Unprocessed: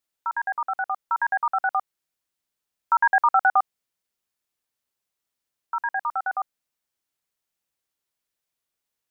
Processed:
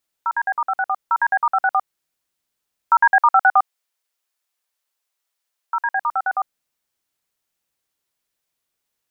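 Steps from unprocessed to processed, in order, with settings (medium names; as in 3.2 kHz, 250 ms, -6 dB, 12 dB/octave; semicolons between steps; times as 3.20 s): 3.11–5.94 s: high-pass 560 Hz 12 dB/octave; trim +5 dB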